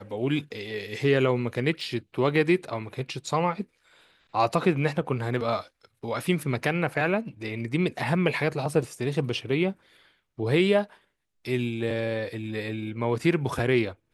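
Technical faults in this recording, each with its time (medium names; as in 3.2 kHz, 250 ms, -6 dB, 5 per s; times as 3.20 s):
1.81 s: dropout 3 ms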